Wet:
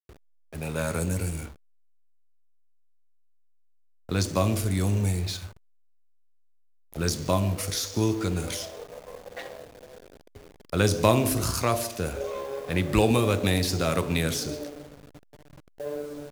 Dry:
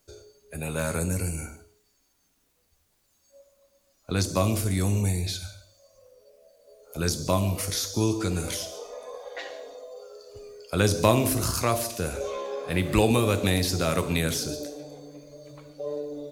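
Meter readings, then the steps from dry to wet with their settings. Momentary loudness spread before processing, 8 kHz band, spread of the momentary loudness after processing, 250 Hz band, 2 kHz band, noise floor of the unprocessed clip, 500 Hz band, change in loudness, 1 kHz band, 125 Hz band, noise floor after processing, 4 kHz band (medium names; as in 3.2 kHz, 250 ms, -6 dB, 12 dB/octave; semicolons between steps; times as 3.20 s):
21 LU, -2.0 dB, 18 LU, 0.0 dB, -0.5 dB, -69 dBFS, 0.0 dB, 0.0 dB, 0.0 dB, 0.0 dB, -59 dBFS, -1.0 dB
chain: word length cut 8-bit, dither none; hysteresis with a dead band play -35 dBFS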